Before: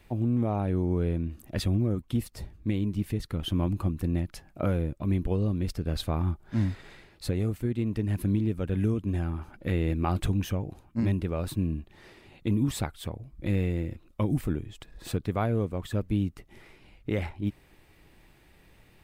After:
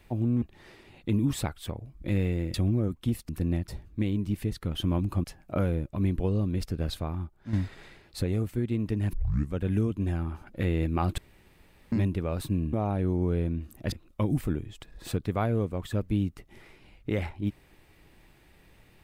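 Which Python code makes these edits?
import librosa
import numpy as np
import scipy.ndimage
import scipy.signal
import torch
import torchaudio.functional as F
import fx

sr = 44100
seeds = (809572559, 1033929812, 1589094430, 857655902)

y = fx.edit(x, sr, fx.swap(start_s=0.42, length_s=1.19, other_s=11.8, other_length_s=2.12),
    fx.move(start_s=3.92, length_s=0.39, to_s=2.36),
    fx.fade_out_to(start_s=5.87, length_s=0.73, curve='qua', floor_db=-9.0),
    fx.tape_start(start_s=8.2, length_s=0.41),
    fx.room_tone_fill(start_s=10.25, length_s=0.74), tone=tone)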